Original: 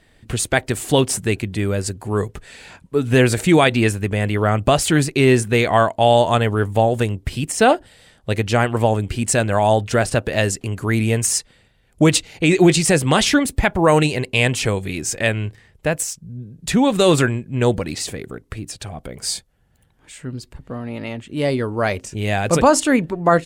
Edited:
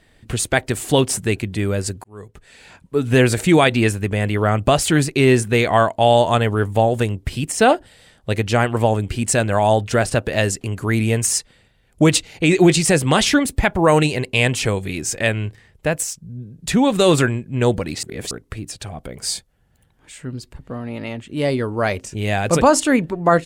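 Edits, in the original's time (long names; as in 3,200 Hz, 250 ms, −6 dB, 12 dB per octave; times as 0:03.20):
0:02.04–0:03.02: fade in
0:18.03–0:18.31: reverse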